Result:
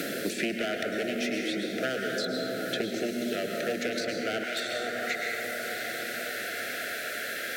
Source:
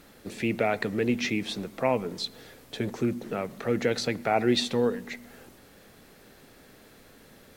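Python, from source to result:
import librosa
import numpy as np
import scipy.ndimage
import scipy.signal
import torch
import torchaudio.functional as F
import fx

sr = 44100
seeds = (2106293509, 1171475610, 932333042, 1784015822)

y = np.minimum(x, 2.0 * 10.0 ** (-25.0 / 20.0) - x)
y = scipy.signal.sosfilt(scipy.signal.cheby1(3, 1.0, [690.0, 1400.0], 'bandstop', fs=sr, output='sos'), y)
y = fx.rev_plate(y, sr, seeds[0], rt60_s=2.2, hf_ratio=0.3, predelay_ms=90, drr_db=1.0)
y = fx.rider(y, sr, range_db=10, speed_s=0.5)
y = fx.highpass(y, sr, hz=fx.steps((0.0, 260.0), (4.44, 1000.0)), slope=12)
y = fx.echo_diffused(y, sr, ms=632, feedback_pct=44, wet_db=-15.0)
y = fx.band_squash(y, sr, depth_pct=100)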